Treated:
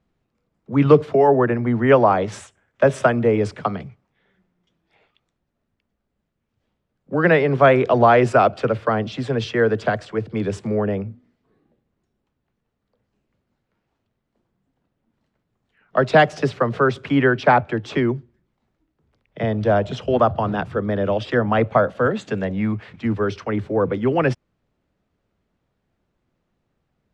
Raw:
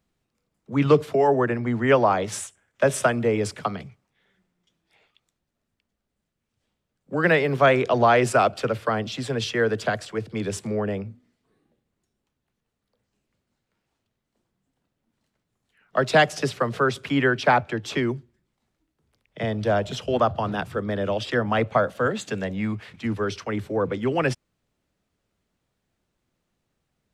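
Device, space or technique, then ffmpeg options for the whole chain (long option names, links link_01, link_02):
through cloth: -af "lowpass=7100,highshelf=frequency=2800:gain=-11.5,volume=5dB"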